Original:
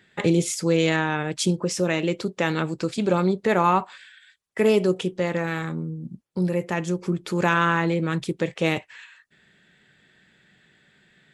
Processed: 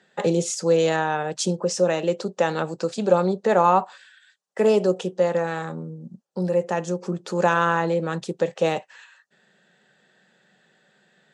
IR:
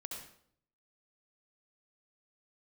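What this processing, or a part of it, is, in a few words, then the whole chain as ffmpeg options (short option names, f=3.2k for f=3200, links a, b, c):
television speaker: -af "highpass=f=170:w=0.5412,highpass=f=170:w=1.3066,equalizer=f=290:t=q:w=4:g=-9,equalizer=f=540:t=q:w=4:g=7,equalizer=f=780:t=q:w=4:g=6,equalizer=f=2.2k:t=q:w=4:g=-10,equalizer=f=3.3k:t=q:w=4:g=-4,equalizer=f=6.3k:t=q:w=4:g=3,lowpass=f=8.8k:w=0.5412,lowpass=f=8.8k:w=1.3066"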